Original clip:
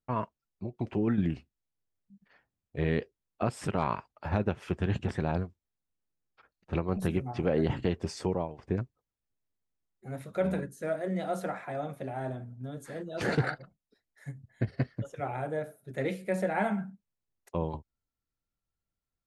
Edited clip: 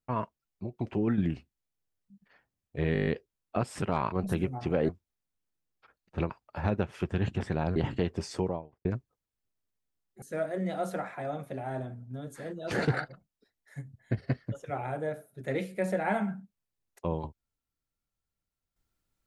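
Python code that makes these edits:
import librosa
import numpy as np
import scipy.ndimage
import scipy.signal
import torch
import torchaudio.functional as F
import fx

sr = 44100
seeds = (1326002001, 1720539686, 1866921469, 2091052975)

y = fx.studio_fade_out(x, sr, start_s=8.27, length_s=0.44)
y = fx.edit(y, sr, fx.stutter(start_s=2.93, slice_s=0.02, count=8),
    fx.swap(start_s=3.98, length_s=1.46, other_s=6.85, other_length_s=0.77),
    fx.cut(start_s=10.08, length_s=0.64), tone=tone)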